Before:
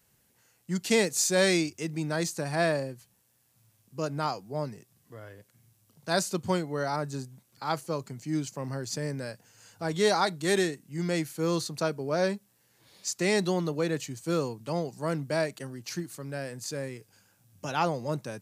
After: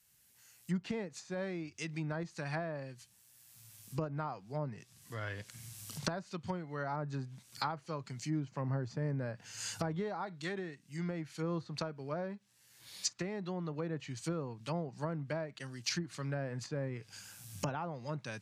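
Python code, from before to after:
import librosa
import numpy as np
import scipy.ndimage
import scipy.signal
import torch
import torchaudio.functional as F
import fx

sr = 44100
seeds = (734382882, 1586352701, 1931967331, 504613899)

y = fx.recorder_agc(x, sr, target_db=-13.0, rise_db_per_s=13.0, max_gain_db=30)
y = fx.env_lowpass_down(y, sr, base_hz=880.0, full_db=-20.0)
y = fx.tone_stack(y, sr, knobs='5-5-5')
y = y * 10.0 ** (5.0 / 20.0)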